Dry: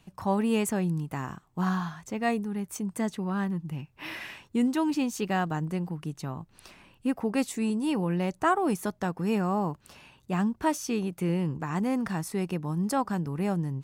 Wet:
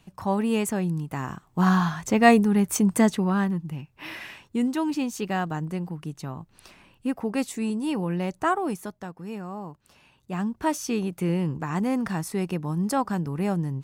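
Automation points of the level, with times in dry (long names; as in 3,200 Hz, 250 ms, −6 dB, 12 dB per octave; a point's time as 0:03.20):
0:01.06 +1.5 dB
0:02.09 +11.5 dB
0:02.92 +11.5 dB
0:03.81 +0.5 dB
0:08.53 +0.5 dB
0:09.14 −8.5 dB
0:09.72 −8.5 dB
0:10.80 +2.5 dB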